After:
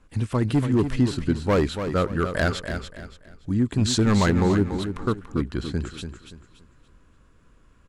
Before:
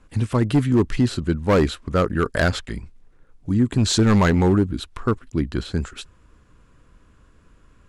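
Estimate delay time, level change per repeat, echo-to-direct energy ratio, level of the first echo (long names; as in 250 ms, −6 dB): 286 ms, −10.0 dB, −8.0 dB, −8.5 dB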